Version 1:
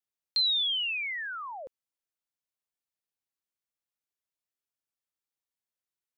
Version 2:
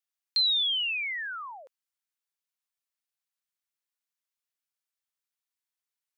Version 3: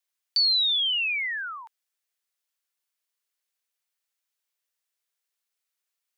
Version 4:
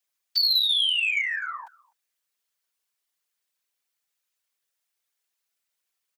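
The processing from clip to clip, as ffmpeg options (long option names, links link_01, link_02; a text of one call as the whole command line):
ffmpeg -i in.wav -af "highpass=1000,volume=1.5dB" out.wav
ffmpeg -i in.wav -filter_complex "[0:a]afreqshift=370,asplit=2[link_01][link_02];[link_02]alimiter=level_in=5.5dB:limit=-24dB:level=0:latency=1,volume=-5.5dB,volume=0dB[link_03];[link_01][link_03]amix=inputs=2:normalize=0" out.wav
ffmpeg -i in.wav -filter_complex "[0:a]afftfilt=real='hypot(re,im)*cos(2*PI*random(0))':imag='hypot(re,im)*sin(2*PI*random(1))':win_size=512:overlap=0.75,aeval=exprs='0.15*(cos(1*acos(clip(val(0)/0.15,-1,1)))-cos(1*PI/2))+0.0188*(cos(5*acos(clip(val(0)/0.15,-1,1)))-cos(5*PI/2))':channel_layout=same,asplit=2[link_01][link_02];[link_02]adelay=250,highpass=300,lowpass=3400,asoftclip=type=hard:threshold=-26.5dB,volume=-25dB[link_03];[link_01][link_03]amix=inputs=2:normalize=0,volume=4.5dB" out.wav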